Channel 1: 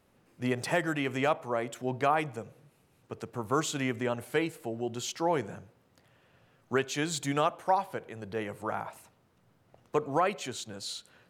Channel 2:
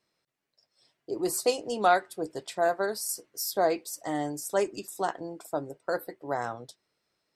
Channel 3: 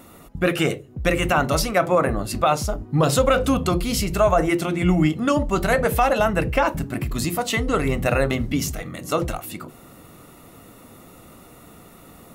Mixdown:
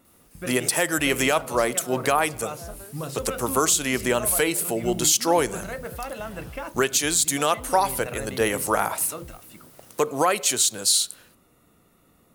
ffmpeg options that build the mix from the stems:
ffmpeg -i stem1.wav -i stem2.wav -i stem3.wav -filter_complex "[0:a]bass=frequency=250:gain=-8,treble=frequency=4000:gain=14,aexciter=amount=2.4:drive=3.3:freq=9100,dynaudnorm=framelen=110:gausssize=7:maxgain=11.5dB,adelay=50,volume=1.5dB[link_01];[1:a]volume=-17.5dB[link_02];[2:a]volume=-14dB[link_03];[link_01][link_02][link_03]amix=inputs=3:normalize=0,equalizer=frequency=770:width_type=o:width=0.59:gain=-3,alimiter=limit=-8.5dB:level=0:latency=1:release=292" out.wav

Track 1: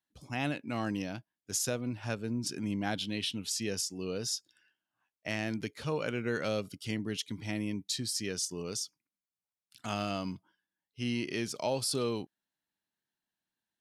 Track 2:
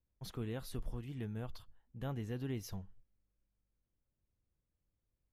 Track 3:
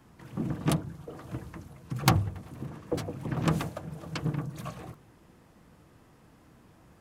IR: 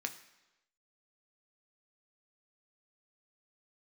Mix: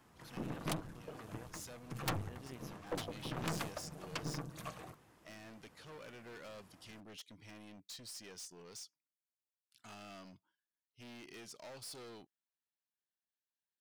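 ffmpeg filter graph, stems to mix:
-filter_complex "[0:a]lowshelf=frequency=110:gain=7,volume=34.5dB,asoftclip=hard,volume=-34.5dB,volume=-7.5dB[link_01];[1:a]volume=-4.5dB,asplit=2[link_02][link_03];[2:a]volume=0dB[link_04];[link_03]apad=whole_len=608975[link_05];[link_01][link_05]sidechaincompress=threshold=-49dB:ratio=8:attack=16:release=211[link_06];[link_06][link_02][link_04]amix=inputs=3:normalize=0,aeval=exprs='(tanh(25.1*val(0)+0.65)-tanh(0.65))/25.1':channel_layout=same,lowshelf=frequency=350:gain=-9.5"

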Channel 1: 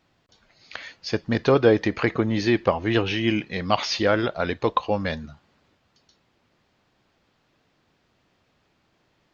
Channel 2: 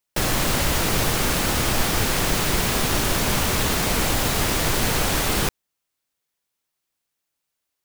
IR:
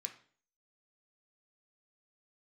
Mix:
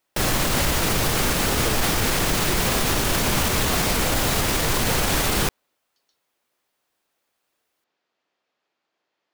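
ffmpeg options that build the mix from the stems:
-filter_complex "[0:a]highpass=420,volume=-10dB[link_01];[1:a]volume=2dB[link_02];[link_01][link_02]amix=inputs=2:normalize=0,alimiter=limit=-11.5dB:level=0:latency=1:release=32"

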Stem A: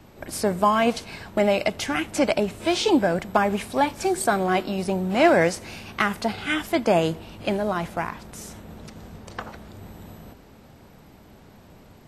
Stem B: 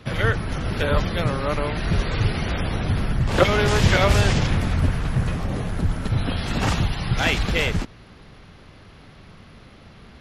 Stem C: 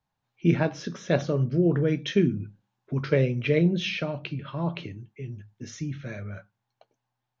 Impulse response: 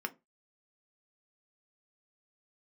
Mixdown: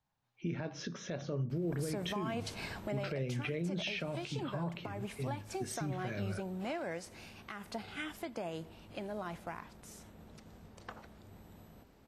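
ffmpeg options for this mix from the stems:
-filter_complex "[0:a]acompressor=threshold=-22dB:ratio=6,adelay=1500,volume=-4dB,afade=type=out:start_time=2.91:duration=0.24:silence=0.334965[link_01];[2:a]alimiter=limit=-15.5dB:level=0:latency=1:release=289,volume=-2.5dB[link_02];[link_01][link_02]amix=inputs=2:normalize=0,alimiter=level_in=4.5dB:limit=-24dB:level=0:latency=1:release=178,volume=-4.5dB"

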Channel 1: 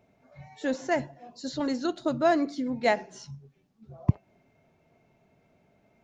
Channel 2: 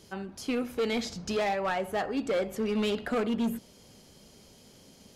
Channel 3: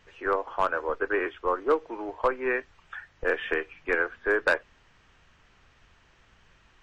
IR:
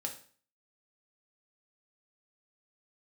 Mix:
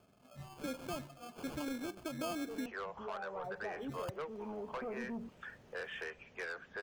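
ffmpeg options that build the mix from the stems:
-filter_complex "[0:a]acompressor=threshold=-30dB:ratio=4,alimiter=level_in=5dB:limit=-24dB:level=0:latency=1:release=341,volume=-5dB,acrusher=samples=23:mix=1:aa=0.000001,volume=-2.5dB,asplit=3[link_01][link_02][link_03];[link_01]atrim=end=2.66,asetpts=PTS-STARTPTS,afade=type=out:start_time=2.656:duration=0.004:curve=hsin[link_04];[link_02]atrim=start=2.66:end=3.44,asetpts=PTS-STARTPTS,volume=0[link_05];[link_03]atrim=start=3.44,asetpts=PTS-STARTPTS,afade=type=in:duration=0.004:curve=hsin[link_06];[link_04][link_05][link_06]concat=n=3:v=0:a=1,asplit=2[link_07][link_08];[1:a]lowpass=frequency=1100:width=0.5412,lowpass=frequency=1100:width=1.3066,equalizer=frequency=230:width=1.5:gain=-4,adelay=1700,volume=-4dB[link_09];[2:a]highpass=frequency=460:width=0.5412,highpass=frequency=460:width=1.3066,highshelf=frequency=6200:gain=9,asoftclip=type=tanh:threshold=-24dB,adelay=2500,volume=-8.5dB[link_10];[link_08]apad=whole_len=302486[link_11];[link_09][link_11]sidechaincompress=threshold=-51dB:ratio=8:attack=47:release=1290[link_12];[link_12][link_10]amix=inputs=2:normalize=0,acompressor=threshold=-41dB:ratio=2.5,volume=0dB[link_13];[link_07][link_13]amix=inputs=2:normalize=0"

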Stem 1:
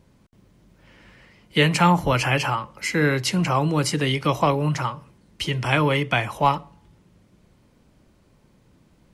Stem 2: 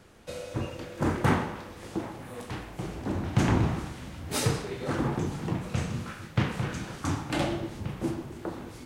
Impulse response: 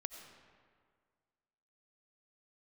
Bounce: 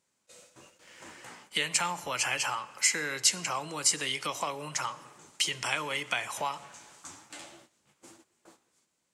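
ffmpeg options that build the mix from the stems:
-filter_complex "[0:a]acompressor=threshold=-26dB:ratio=4,volume=-1.5dB,asplit=3[link_01][link_02][link_03];[link_02]volume=-7dB[link_04];[1:a]alimiter=limit=-17dB:level=0:latency=1:release=474,flanger=delay=8.4:depth=9.5:regen=5:speed=1.1:shape=triangular,volume=1dB,afade=type=out:start_time=1.25:duration=0.53:silence=0.266073,afade=type=in:start_time=4.83:duration=0.78:silence=0.251189,asplit=2[link_05][link_06];[link_06]volume=-14.5dB[link_07];[link_03]apad=whole_len=390724[link_08];[link_05][link_08]sidechaincompress=threshold=-33dB:ratio=8:attack=16:release=141[link_09];[2:a]atrim=start_sample=2205[link_10];[link_04][link_07]amix=inputs=2:normalize=0[link_11];[link_11][link_10]afir=irnorm=-1:irlink=0[link_12];[link_01][link_09][link_12]amix=inputs=3:normalize=0,highpass=frequency=1200:poles=1,equalizer=frequency=7500:width=1.4:gain=12.5,agate=range=-14dB:threshold=-55dB:ratio=16:detection=peak"

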